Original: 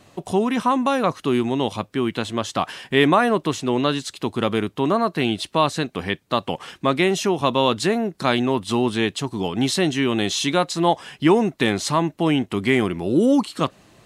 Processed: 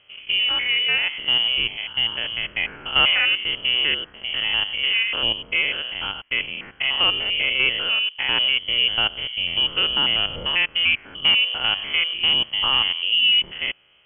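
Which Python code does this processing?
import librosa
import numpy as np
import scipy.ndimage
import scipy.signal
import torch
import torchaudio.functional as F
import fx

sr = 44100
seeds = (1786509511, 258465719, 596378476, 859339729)

y = fx.spec_steps(x, sr, hold_ms=100)
y = fx.leveller(y, sr, passes=1)
y = fx.freq_invert(y, sr, carrier_hz=3200)
y = y * 10.0 ** (-2.5 / 20.0)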